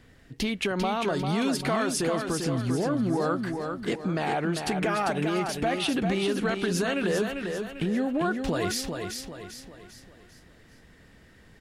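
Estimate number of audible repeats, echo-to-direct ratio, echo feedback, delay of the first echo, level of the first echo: 5, −4.5 dB, 43%, 396 ms, −5.5 dB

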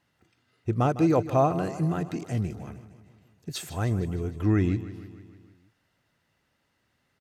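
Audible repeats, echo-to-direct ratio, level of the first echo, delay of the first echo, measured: 5, −12.5 dB, −14.5 dB, 154 ms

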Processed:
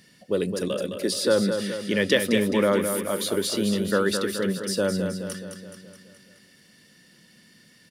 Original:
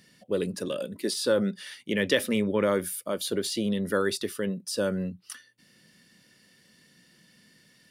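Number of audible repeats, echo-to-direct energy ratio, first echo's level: 6, −5.5 dB, −7.0 dB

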